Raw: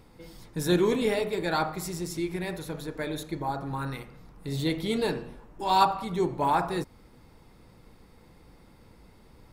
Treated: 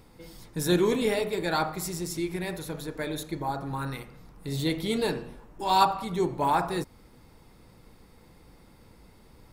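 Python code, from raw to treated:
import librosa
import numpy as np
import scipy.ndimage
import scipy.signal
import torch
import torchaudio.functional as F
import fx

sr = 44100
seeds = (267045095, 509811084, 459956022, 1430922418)

y = fx.high_shelf(x, sr, hz=5700.0, db=4.5)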